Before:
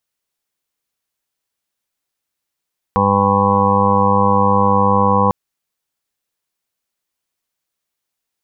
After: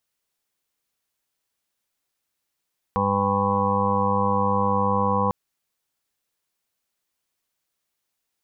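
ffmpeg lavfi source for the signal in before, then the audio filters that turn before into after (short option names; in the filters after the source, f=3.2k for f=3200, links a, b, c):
-f lavfi -i "aevalsrc='0.0944*sin(2*PI*99.7*t)+0.133*sin(2*PI*199.4*t)+0.0282*sin(2*PI*299.1*t)+0.0211*sin(2*PI*398.8*t)+0.133*sin(2*PI*498.5*t)+0.015*sin(2*PI*598.2*t)+0.0126*sin(2*PI*697.9*t)+0.0944*sin(2*PI*797.6*t)+0.0631*sin(2*PI*897.3*t)+0.158*sin(2*PI*997*t)+0.119*sin(2*PI*1096.7*t)':d=2.35:s=44100"
-af "alimiter=limit=-12.5dB:level=0:latency=1:release=29"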